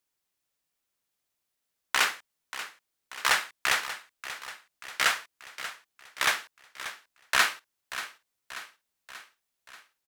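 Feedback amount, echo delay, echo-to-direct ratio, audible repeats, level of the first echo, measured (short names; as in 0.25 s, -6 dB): 57%, 0.585 s, -11.5 dB, 5, -13.0 dB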